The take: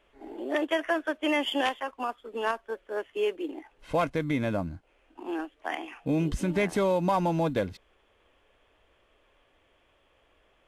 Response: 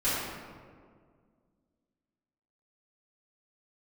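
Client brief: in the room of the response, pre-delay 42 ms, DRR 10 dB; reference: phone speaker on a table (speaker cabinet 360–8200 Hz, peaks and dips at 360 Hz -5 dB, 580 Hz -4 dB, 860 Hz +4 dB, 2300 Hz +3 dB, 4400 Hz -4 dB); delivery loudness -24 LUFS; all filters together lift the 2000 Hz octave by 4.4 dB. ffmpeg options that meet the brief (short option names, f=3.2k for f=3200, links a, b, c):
-filter_complex "[0:a]equalizer=f=2k:t=o:g=4,asplit=2[a][b];[1:a]atrim=start_sample=2205,adelay=42[c];[b][c]afir=irnorm=-1:irlink=0,volume=-21.5dB[d];[a][d]amix=inputs=2:normalize=0,highpass=f=360:w=0.5412,highpass=f=360:w=1.3066,equalizer=f=360:t=q:w=4:g=-5,equalizer=f=580:t=q:w=4:g=-4,equalizer=f=860:t=q:w=4:g=4,equalizer=f=2.3k:t=q:w=4:g=3,equalizer=f=4.4k:t=q:w=4:g=-4,lowpass=f=8.2k:w=0.5412,lowpass=f=8.2k:w=1.3066,volume=6dB"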